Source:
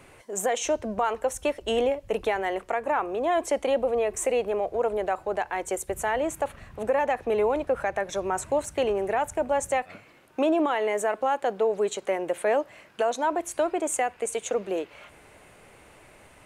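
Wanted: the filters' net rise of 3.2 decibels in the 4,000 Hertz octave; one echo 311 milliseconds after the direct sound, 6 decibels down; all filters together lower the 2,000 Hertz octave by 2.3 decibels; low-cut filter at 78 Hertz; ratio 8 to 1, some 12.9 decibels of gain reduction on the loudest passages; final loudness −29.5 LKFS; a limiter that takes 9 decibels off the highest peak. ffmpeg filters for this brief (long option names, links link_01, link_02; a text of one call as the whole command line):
ffmpeg -i in.wav -af "highpass=78,equalizer=frequency=2000:width_type=o:gain=-4.5,equalizer=frequency=4000:width_type=o:gain=7,acompressor=threshold=-34dB:ratio=8,alimiter=level_in=5.5dB:limit=-24dB:level=0:latency=1,volume=-5.5dB,aecho=1:1:311:0.501,volume=9.5dB" out.wav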